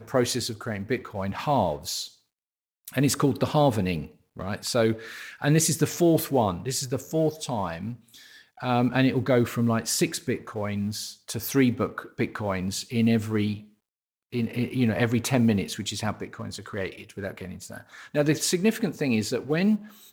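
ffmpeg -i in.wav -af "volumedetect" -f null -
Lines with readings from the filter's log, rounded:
mean_volume: -26.4 dB
max_volume: -8.7 dB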